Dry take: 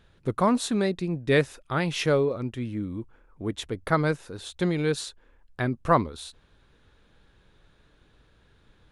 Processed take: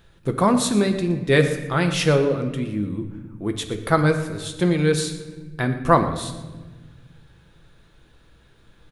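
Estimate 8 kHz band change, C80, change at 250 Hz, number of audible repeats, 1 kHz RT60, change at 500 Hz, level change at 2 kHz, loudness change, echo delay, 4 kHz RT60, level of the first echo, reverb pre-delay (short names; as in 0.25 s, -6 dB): +8.5 dB, 10.5 dB, +6.0 dB, 1, 1.1 s, +5.0 dB, +5.0 dB, +5.0 dB, 0.118 s, 0.90 s, -17.0 dB, 6 ms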